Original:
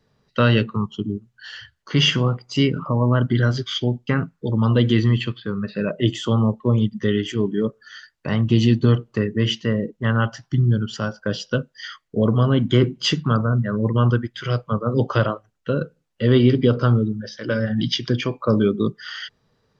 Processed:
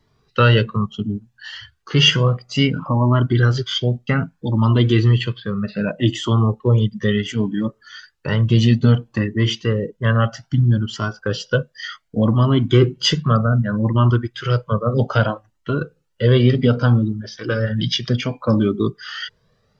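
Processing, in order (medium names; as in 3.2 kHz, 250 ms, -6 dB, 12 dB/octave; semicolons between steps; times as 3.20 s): Shepard-style flanger rising 0.64 Hz; trim +7 dB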